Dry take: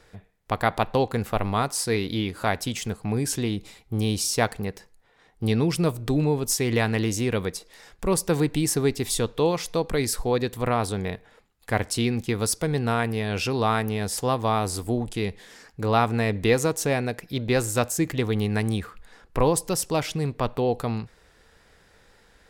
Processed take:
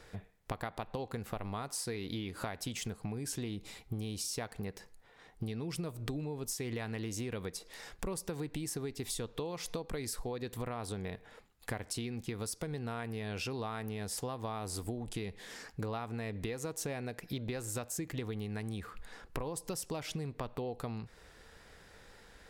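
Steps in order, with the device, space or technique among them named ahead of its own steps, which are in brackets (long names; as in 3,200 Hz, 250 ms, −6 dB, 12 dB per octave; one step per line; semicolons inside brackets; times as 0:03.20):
serial compression, leveller first (downward compressor 2.5 to 1, threshold −25 dBFS, peak gain reduction 7.5 dB; downward compressor 6 to 1, threshold −36 dBFS, peak gain reduction 14 dB)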